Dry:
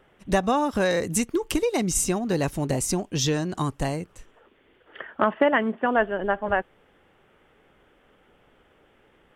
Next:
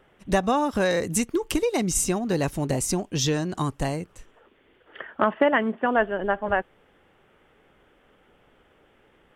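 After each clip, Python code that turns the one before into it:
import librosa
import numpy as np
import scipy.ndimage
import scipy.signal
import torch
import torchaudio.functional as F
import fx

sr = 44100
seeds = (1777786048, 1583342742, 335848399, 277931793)

y = x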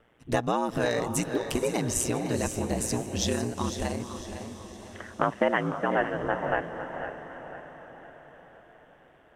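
y = x * np.sin(2.0 * np.pi * 59.0 * np.arange(len(x)) / sr)
y = fx.echo_diffused(y, sr, ms=483, feedback_pct=57, wet_db=-11.5)
y = fx.echo_warbled(y, sr, ms=502, feedback_pct=36, rate_hz=2.8, cents=81, wet_db=-11)
y = F.gain(torch.from_numpy(y), -1.5).numpy()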